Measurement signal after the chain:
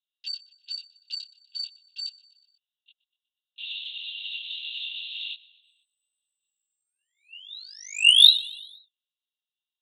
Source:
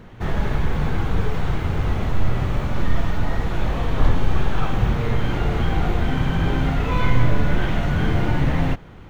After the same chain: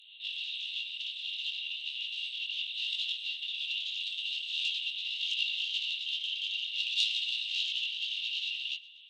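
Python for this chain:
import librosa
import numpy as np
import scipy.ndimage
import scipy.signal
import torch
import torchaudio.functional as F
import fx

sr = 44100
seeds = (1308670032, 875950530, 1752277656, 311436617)

y = fx.lpc_vocoder(x, sr, seeds[0], excitation='whisper', order=10)
y = fx.fold_sine(y, sr, drive_db=14, ceiling_db=-1.5)
y = scipy.signal.sosfilt(scipy.signal.cheby1(6, 9, 2700.0, 'highpass', fs=sr, output='sos'), y)
y = fx.echo_feedback(y, sr, ms=122, feedback_pct=57, wet_db=-21.0)
y = fx.detune_double(y, sr, cents=13)
y = y * librosa.db_to_amplitude(1.5)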